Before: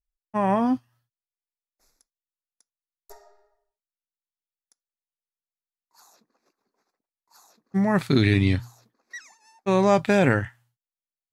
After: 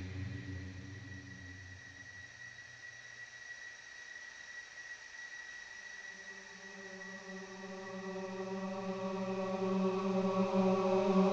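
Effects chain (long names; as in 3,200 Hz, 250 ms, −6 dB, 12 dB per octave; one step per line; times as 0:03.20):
variable-slope delta modulation 32 kbit/s
extreme stretch with random phases 15×, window 1.00 s, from 0:08.84
level −5.5 dB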